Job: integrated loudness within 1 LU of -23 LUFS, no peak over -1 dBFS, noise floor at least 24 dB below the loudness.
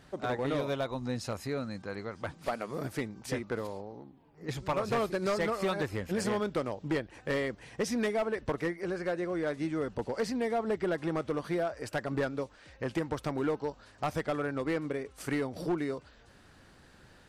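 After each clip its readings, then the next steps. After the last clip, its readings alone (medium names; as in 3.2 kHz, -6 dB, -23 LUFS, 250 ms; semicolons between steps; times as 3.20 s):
clipped samples 1.6%; clipping level -24.5 dBFS; loudness -34.0 LUFS; peak level -24.5 dBFS; loudness target -23.0 LUFS
-> clip repair -24.5 dBFS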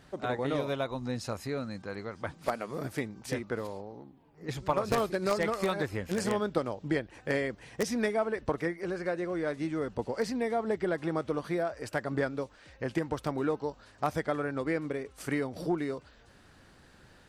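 clipped samples 0.0%; loudness -33.0 LUFS; peak level -15.5 dBFS; loudness target -23.0 LUFS
-> trim +10 dB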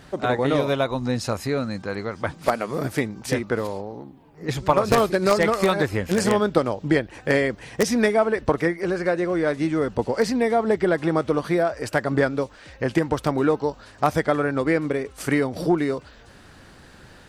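loudness -23.0 LUFS; peak level -5.5 dBFS; noise floor -48 dBFS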